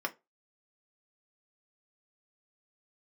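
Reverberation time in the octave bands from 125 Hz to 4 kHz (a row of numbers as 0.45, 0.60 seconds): 0.20, 0.20, 0.25, 0.20, 0.20, 0.15 seconds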